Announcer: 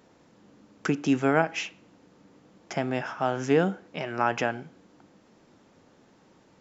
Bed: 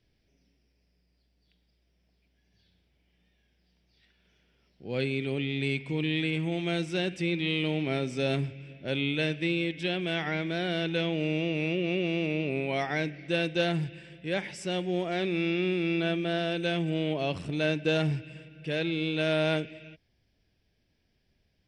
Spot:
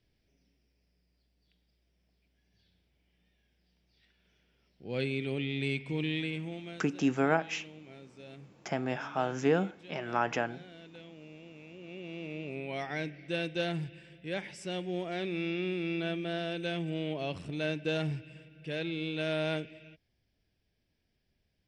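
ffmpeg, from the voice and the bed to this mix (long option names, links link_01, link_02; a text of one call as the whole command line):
ffmpeg -i stem1.wav -i stem2.wav -filter_complex "[0:a]adelay=5950,volume=-4.5dB[link_01];[1:a]volume=13dB,afade=type=out:start_time=6.01:duration=0.84:silence=0.11885,afade=type=in:start_time=11.73:duration=1.31:silence=0.158489[link_02];[link_01][link_02]amix=inputs=2:normalize=0" out.wav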